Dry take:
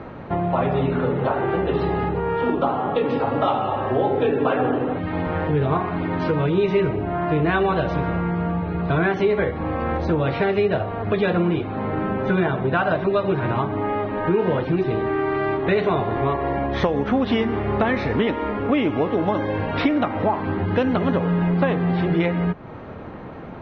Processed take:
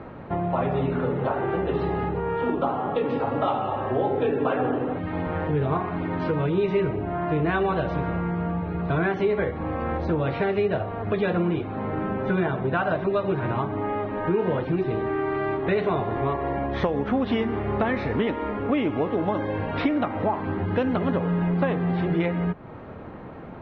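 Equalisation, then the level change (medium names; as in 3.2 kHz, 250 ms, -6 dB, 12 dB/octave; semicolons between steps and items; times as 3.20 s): low-pass 3.6 kHz 6 dB/octave; -3.5 dB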